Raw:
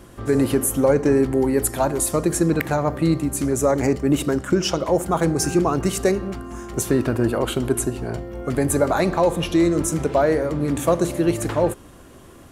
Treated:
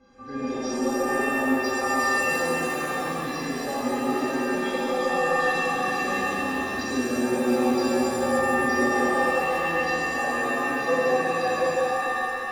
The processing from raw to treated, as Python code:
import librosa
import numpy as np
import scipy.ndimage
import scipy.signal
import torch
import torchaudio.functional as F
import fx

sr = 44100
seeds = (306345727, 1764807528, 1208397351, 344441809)

p1 = fx.freq_compress(x, sr, knee_hz=1500.0, ratio=1.5)
p2 = fx.low_shelf(p1, sr, hz=97.0, db=-6.5)
p3 = fx.rider(p2, sr, range_db=10, speed_s=0.5)
p4 = fx.high_shelf(p3, sr, hz=4600.0, db=-12.0)
p5 = fx.stiff_resonator(p4, sr, f0_hz=240.0, decay_s=0.36, stiffness=0.03)
p6 = p5 + fx.echo_single(p5, sr, ms=145, db=-6.5, dry=0)
p7 = fx.rev_shimmer(p6, sr, seeds[0], rt60_s=2.6, semitones=7, shimmer_db=-2, drr_db=-6.5)
y = p7 * 10.0 ** (2.5 / 20.0)